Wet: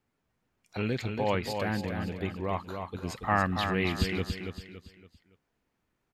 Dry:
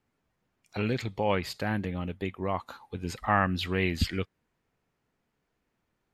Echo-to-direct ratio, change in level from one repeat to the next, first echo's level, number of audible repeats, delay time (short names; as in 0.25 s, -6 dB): -5.5 dB, -8.5 dB, -6.0 dB, 4, 0.282 s